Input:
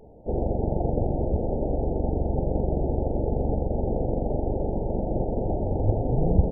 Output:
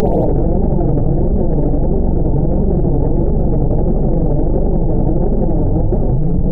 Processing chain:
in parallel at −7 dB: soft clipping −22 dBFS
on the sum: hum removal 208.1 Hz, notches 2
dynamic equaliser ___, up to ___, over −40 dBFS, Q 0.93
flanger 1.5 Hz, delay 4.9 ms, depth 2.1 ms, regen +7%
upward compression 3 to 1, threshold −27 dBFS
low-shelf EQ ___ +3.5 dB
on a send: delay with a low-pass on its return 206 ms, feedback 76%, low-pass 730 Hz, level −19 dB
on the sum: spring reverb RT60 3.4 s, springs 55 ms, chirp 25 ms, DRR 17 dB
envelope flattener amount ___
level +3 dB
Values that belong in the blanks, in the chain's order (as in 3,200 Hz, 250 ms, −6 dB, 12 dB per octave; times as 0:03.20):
660 Hz, −7 dB, 340 Hz, 100%